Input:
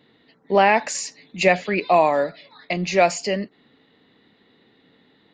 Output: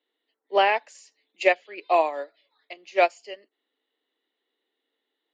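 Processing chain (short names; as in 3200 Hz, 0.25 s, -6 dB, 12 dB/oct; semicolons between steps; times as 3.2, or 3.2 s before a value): steep high-pass 310 Hz 36 dB/oct; bell 3100 Hz +8 dB 0.29 oct; upward expander 2.5:1, over -26 dBFS; gain -1.5 dB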